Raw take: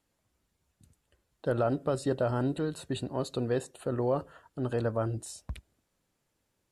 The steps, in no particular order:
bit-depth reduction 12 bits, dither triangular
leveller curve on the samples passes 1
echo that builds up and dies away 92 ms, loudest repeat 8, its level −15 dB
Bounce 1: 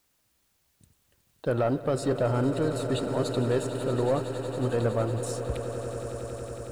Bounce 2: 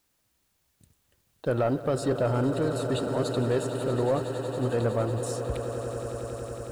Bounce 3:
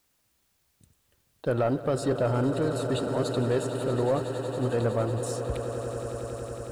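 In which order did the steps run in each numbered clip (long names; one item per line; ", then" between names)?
leveller curve on the samples, then bit-depth reduction, then echo that builds up and dies away
bit-depth reduction, then echo that builds up and dies away, then leveller curve on the samples
echo that builds up and dies away, then leveller curve on the samples, then bit-depth reduction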